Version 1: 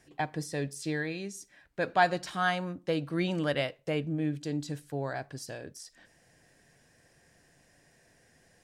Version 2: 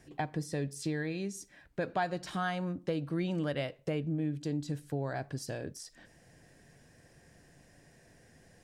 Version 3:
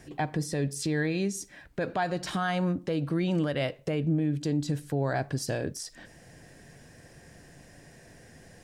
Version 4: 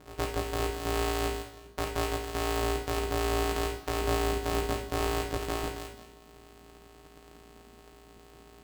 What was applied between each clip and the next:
low-shelf EQ 480 Hz +7 dB; downward compressor 2.5 to 1, threshold −33 dBFS, peak gain reduction 11 dB
brickwall limiter −27 dBFS, peak gain reduction 7.5 dB; level +8 dB
samples sorted by size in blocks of 256 samples; coupled-rooms reverb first 0.61 s, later 1.7 s, DRR 1 dB; ring modulation 230 Hz

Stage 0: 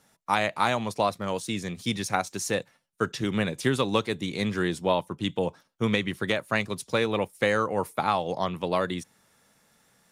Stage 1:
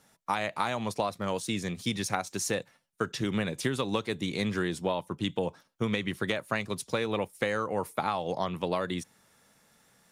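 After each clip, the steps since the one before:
downward compressor, threshold −25 dBFS, peak gain reduction 7.5 dB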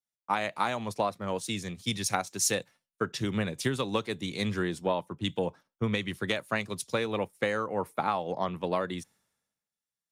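multiband upward and downward expander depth 100%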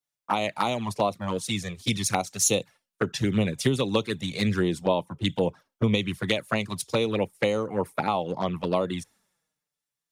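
flanger swept by the level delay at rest 6.9 ms, full sweep at −25 dBFS
level +7 dB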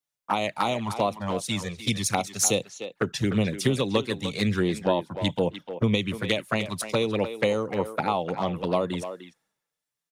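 far-end echo of a speakerphone 300 ms, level −9 dB

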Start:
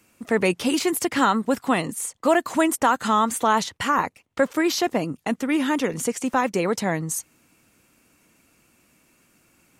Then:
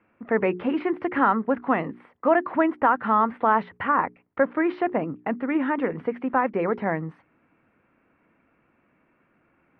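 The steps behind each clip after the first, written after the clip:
inverse Chebyshev low-pass filter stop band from 6,400 Hz, stop band 60 dB
low-shelf EQ 150 Hz −6.5 dB
mains-hum notches 60/120/180/240/300/360/420 Hz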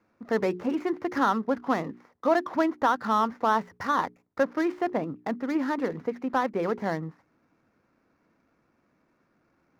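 running median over 15 samples
level −3 dB

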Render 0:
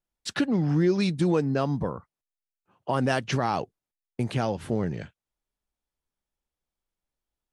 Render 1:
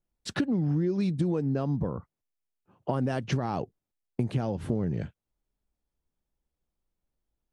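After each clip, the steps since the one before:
tilt shelving filter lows +6 dB, about 650 Hz
downward compressor, threshold −26 dBFS, peak gain reduction 11 dB
level +1.5 dB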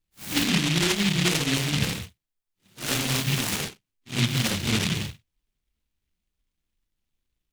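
random phases in long frames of 200 ms
short delay modulated by noise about 2,800 Hz, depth 0.48 ms
level +3.5 dB

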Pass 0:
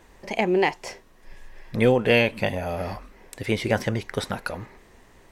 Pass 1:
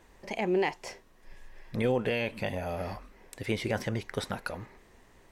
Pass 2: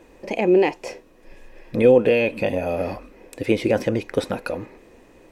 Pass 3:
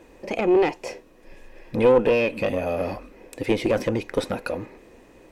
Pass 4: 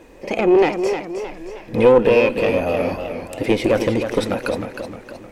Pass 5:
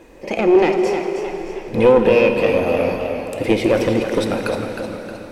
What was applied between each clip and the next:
brickwall limiter −12.5 dBFS, peak gain reduction 7.5 dB; level −5.5 dB
hollow resonant body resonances 310/490/2,500 Hz, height 12 dB, ringing for 25 ms; level +3.5 dB
one-sided soft clipper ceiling −14 dBFS
echo ahead of the sound 61 ms −17.5 dB; feedback echo with a swinging delay time 310 ms, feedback 47%, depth 86 cents, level −8 dB; level +4.5 dB
dense smooth reverb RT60 3.8 s, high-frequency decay 0.9×, DRR 5.5 dB

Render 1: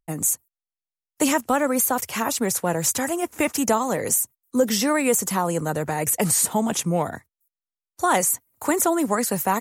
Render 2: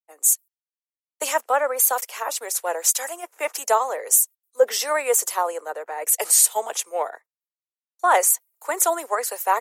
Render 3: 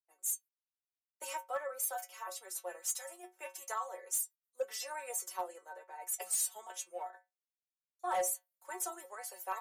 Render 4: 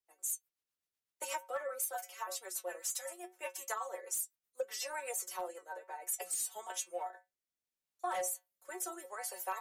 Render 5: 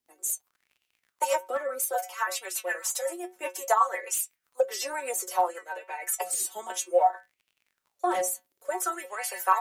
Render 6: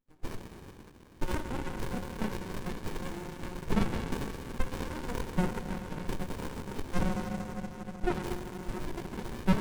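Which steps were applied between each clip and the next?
Butterworth high-pass 450 Hz 36 dB per octave; multiband upward and downward expander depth 100%
stiff-string resonator 180 Hz, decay 0.21 s, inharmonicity 0.002; gain into a clipping stage and back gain 20.5 dB; level −6.5 dB
rotating-speaker cabinet horn 8 Hz, later 0.75 Hz, at 0:05.52; downward compressor 6 to 1, threshold −39 dBFS, peak gain reduction 8.5 dB; level +5.5 dB
surface crackle 44 per second −62 dBFS; auto-filter bell 0.6 Hz 240–2,800 Hz +15 dB; level +7 dB
convolution reverb RT60 4.8 s, pre-delay 16 ms, DRR 3 dB; windowed peak hold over 65 samples

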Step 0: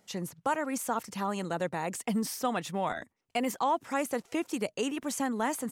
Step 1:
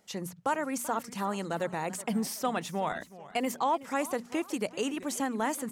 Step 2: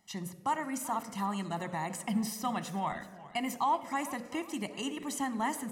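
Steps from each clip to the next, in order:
mains-hum notches 60/120/180/240 Hz; feedback echo with a swinging delay time 379 ms, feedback 39%, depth 203 cents, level −17.5 dB
convolution reverb RT60 1.2 s, pre-delay 6 ms, DRR 12 dB; level −5 dB

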